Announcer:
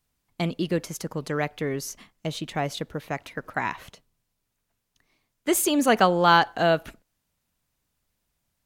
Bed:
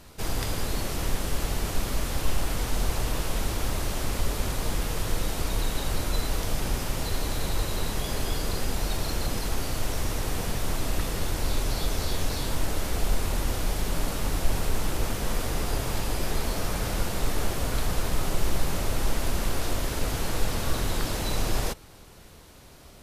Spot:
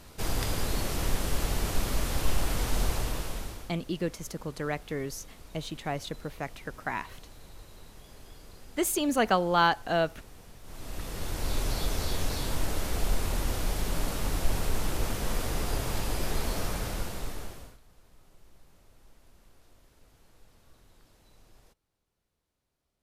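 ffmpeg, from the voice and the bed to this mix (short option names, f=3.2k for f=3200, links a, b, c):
-filter_complex "[0:a]adelay=3300,volume=-5.5dB[a];[1:a]volume=18dB,afade=t=out:st=2.82:d=0.9:silence=0.0944061,afade=t=in:st=10.63:d=1:silence=0.112202,afade=t=out:st=16.59:d=1.19:silence=0.0316228[b];[a][b]amix=inputs=2:normalize=0"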